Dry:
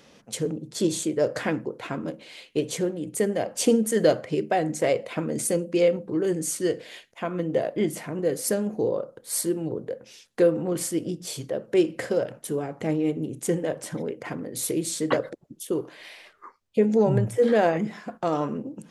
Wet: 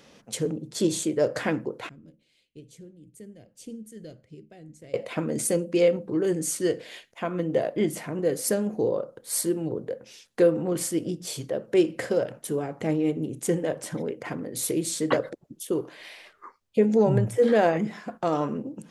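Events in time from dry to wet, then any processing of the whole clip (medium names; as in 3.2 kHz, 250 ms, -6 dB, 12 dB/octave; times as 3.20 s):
1.89–4.94 s: amplifier tone stack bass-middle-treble 10-0-1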